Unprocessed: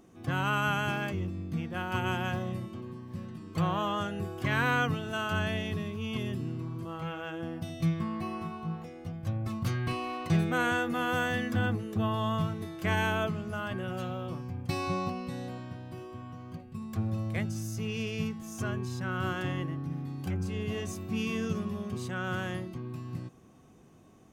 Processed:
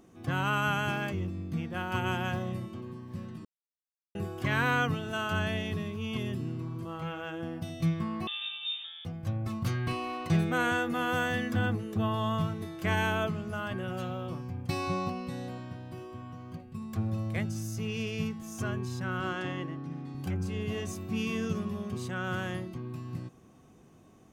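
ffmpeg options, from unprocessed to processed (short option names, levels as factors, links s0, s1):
-filter_complex "[0:a]asettb=1/sr,asplit=3[s0][s1][s2];[s0]atrim=end=8.274[s3];[s1]atrim=start=8.27:end=9.05,asetpts=PTS-STARTPTS,afade=t=in:d=0.004:c=qsin,afade=t=out:st=0.776:d=0.004:c=qsin,lowpass=f=3200:t=q:w=0.5098,lowpass=f=3200:t=q:w=0.6013,lowpass=f=3200:t=q:w=0.9,lowpass=f=3200:t=q:w=2.563,afreqshift=-3800[s4];[s2]atrim=start=9.046[s5];[s3][s4]acrossfade=d=0.004:c1=hsin:c2=qsin[s6];[s6][s5]acrossfade=d=0.004:c1=qsin:c2=hsin,asettb=1/sr,asplit=3[s7][s8][s9];[s7]atrim=end=19.204[s10];[s8]atrim=start=19.2:end=20.15,asetpts=PTS-STARTPTS,afade=t=in:d=0.004:c=qsin,afade=t=out:st=0.946:d=0.004:c=qsin,highpass=170,lowpass=7500[s11];[s9]atrim=start=20.146[s12];[s10][s11]acrossfade=d=0.004:c1=hsin:c2=qsin[s13];[s13][s12]acrossfade=d=0.004:c1=qsin:c2=hsin,asplit=3[s14][s15][s16];[s14]atrim=end=3.45,asetpts=PTS-STARTPTS,afade=t=out:st=3.446:d=0.004:c=hsin[s17];[s15]atrim=start=3.45:end=4.15,asetpts=PTS-STARTPTS,volume=0[s18];[s16]atrim=start=4.15,asetpts=PTS-STARTPTS,afade=t=in:d=0.004:c=hsin[s19];[s17][s18][s19]concat=n=3:v=0:a=1"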